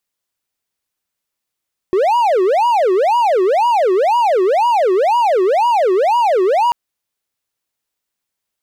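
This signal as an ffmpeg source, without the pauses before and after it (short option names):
-f lavfi -i "aevalsrc='0.376*(1-4*abs(mod((666.5*t-302.5/(2*PI*2)*sin(2*PI*2*t))+0.25,1)-0.5))':d=4.79:s=44100"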